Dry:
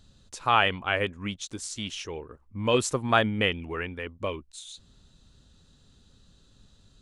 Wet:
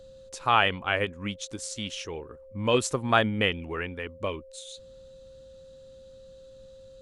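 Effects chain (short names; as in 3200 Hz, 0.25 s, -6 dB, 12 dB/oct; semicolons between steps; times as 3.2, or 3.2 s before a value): whine 530 Hz -47 dBFS; ending taper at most 340 dB/s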